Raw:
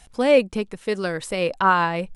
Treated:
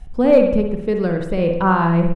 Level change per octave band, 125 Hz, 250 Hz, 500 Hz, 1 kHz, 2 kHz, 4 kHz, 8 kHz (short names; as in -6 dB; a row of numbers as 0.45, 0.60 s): +13.0 dB, +9.0 dB, +4.5 dB, +0.5 dB, -3.0 dB, -7.5 dB, under -10 dB